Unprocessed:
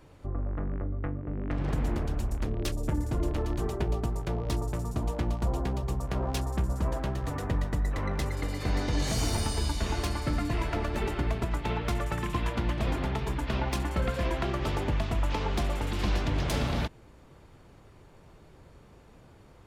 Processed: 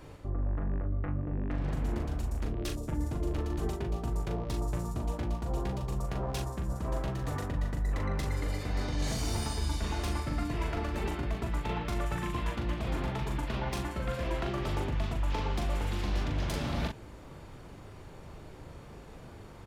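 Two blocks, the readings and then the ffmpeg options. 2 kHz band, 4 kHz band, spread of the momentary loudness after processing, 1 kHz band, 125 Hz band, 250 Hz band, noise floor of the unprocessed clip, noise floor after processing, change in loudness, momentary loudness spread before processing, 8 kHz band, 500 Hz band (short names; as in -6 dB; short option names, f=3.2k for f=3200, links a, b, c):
-3.5 dB, -4.0 dB, 16 LU, -3.0 dB, -2.5 dB, -3.0 dB, -54 dBFS, -49 dBFS, -3.0 dB, 4 LU, -4.0 dB, -3.5 dB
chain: -filter_complex "[0:a]areverse,acompressor=threshold=-36dB:ratio=6,areverse,asplit=2[a][b];[b]adelay=40,volume=-5dB[c];[a][c]amix=inputs=2:normalize=0,volume=5dB"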